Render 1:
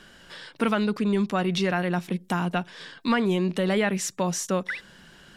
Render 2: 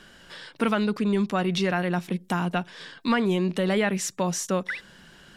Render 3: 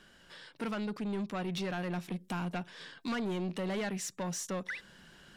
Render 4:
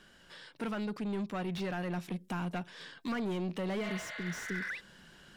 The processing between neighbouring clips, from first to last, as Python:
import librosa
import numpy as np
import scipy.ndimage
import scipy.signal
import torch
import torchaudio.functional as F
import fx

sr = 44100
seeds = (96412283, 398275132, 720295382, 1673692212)

y1 = x
y2 = fx.rider(y1, sr, range_db=10, speed_s=2.0)
y2 = 10.0 ** (-23.0 / 20.0) * np.tanh(y2 / 10.0 ** (-23.0 / 20.0))
y2 = F.gain(torch.from_numpy(y2), -7.5).numpy()
y3 = fx.spec_repair(y2, sr, seeds[0], start_s=3.86, length_s=0.8, low_hz=480.0, high_hz=4800.0, source='both')
y3 = fx.slew_limit(y3, sr, full_power_hz=32.0)